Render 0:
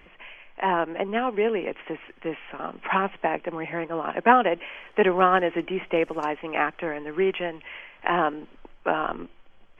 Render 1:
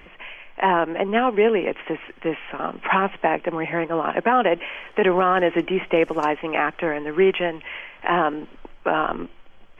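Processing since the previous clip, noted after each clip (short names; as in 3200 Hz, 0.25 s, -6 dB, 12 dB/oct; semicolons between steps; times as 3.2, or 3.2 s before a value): limiter -14 dBFS, peak gain reduction 11 dB; gain +6 dB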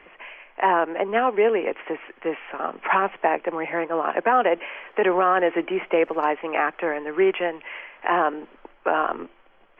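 three-band isolator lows -15 dB, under 290 Hz, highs -21 dB, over 2900 Hz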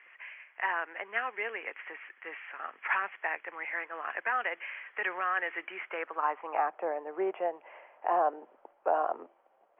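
band-pass sweep 1900 Hz -> 690 Hz, 5.78–6.8; gain -2.5 dB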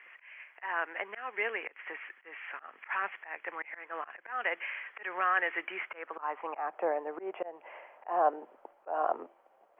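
auto swell 0.228 s; gain +2.5 dB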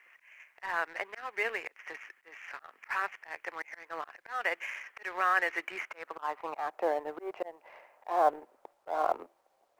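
G.711 law mismatch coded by A; gain +2 dB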